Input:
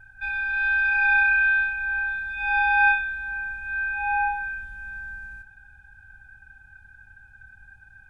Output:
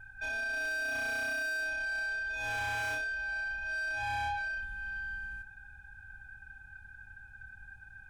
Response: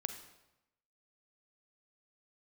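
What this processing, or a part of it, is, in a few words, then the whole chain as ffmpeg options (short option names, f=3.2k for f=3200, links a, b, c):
saturation between pre-emphasis and de-emphasis: -af "highshelf=f=2.2k:g=10.5,asoftclip=type=tanh:threshold=-28.5dB,highshelf=f=2.2k:g=-10.5,volume=-1dB"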